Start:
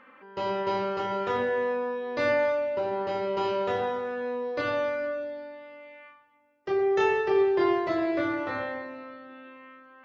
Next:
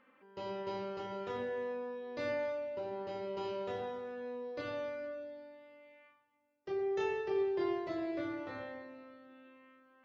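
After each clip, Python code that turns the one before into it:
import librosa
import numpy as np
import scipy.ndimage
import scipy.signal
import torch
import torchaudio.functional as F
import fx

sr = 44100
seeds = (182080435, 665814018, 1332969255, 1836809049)

y = fx.peak_eq(x, sr, hz=1300.0, db=-6.0, octaves=1.9)
y = y * 10.0 ** (-9.0 / 20.0)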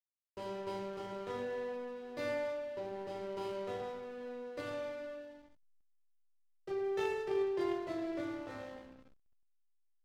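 y = fx.cheby_harmonics(x, sr, harmonics=(3, 5), levels_db=(-18, -29), full_scale_db=-24.0)
y = fx.peak_eq(y, sr, hz=5500.0, db=4.5, octaves=1.9)
y = fx.backlash(y, sr, play_db=-44.5)
y = y * 10.0 ** (1.5 / 20.0)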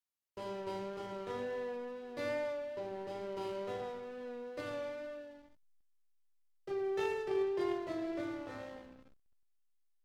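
y = fx.wow_flutter(x, sr, seeds[0], rate_hz=2.1, depth_cents=19.0)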